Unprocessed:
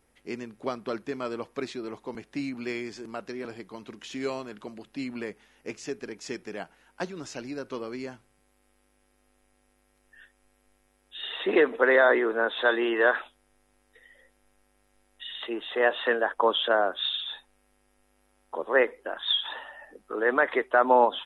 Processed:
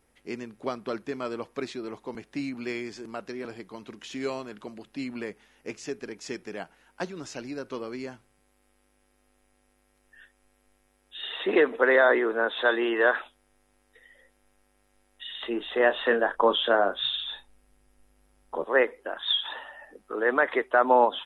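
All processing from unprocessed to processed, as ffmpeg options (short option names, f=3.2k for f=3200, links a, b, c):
-filter_complex "[0:a]asettb=1/sr,asplit=3[a][b][c];[a]atrim=end=15.434[d];[b]atrim=start=15.43:end=18.64,asetpts=PTS-STARTPTS,afade=t=in:d=0.004:c=qsin,afade=t=out:st=3.206:d=0.004:c=qsin,lowshelf=f=190:g=11.5,asplit=2[e][f];[f]adelay=30,volume=-11dB[g];[e][g]amix=inputs=2:normalize=0,atrim=end_sample=141561[h];[c]atrim=start=18.636[i];[d][h]acrossfade=d=0.004:c1=hsin:c2=qsin[j];[j][i]acrossfade=d=0.004:c1=qsin:c2=hsin"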